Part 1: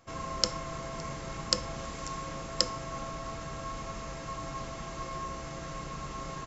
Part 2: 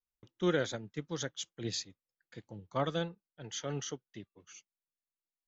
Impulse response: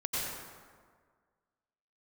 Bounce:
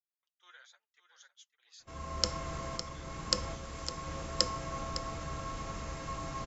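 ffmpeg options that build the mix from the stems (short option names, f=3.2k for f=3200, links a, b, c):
-filter_complex "[0:a]adelay=1800,volume=-1.5dB,asplit=2[a][b];[b]volume=-11dB[c];[1:a]highpass=f=1k:w=0.5412,highpass=f=1k:w=1.3066,flanger=delay=2.2:depth=6.5:regen=29:speed=0.98:shape=triangular,volume=-14.5dB,asplit=3[d][e][f];[e]volume=-11.5dB[g];[f]apad=whole_len=364349[h];[a][h]sidechaincompress=threshold=-58dB:ratio=10:attack=12:release=814[i];[c][g]amix=inputs=2:normalize=0,aecho=0:1:557:1[j];[i][d][j]amix=inputs=3:normalize=0,equalizer=f=73:t=o:w=0.26:g=12.5"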